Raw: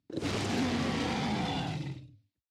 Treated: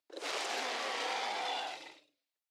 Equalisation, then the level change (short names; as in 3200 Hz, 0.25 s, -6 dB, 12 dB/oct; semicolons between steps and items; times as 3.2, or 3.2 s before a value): HPF 510 Hz 24 dB/oct; 0.0 dB